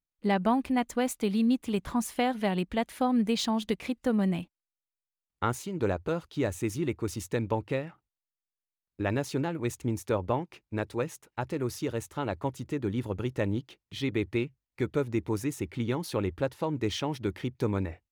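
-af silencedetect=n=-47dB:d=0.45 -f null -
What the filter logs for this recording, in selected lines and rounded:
silence_start: 4.44
silence_end: 5.42 | silence_duration: 0.98
silence_start: 7.93
silence_end: 8.99 | silence_duration: 1.06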